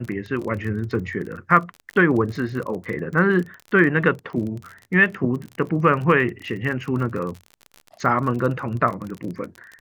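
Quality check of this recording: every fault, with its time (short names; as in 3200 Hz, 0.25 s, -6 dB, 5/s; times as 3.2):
crackle 34/s -29 dBFS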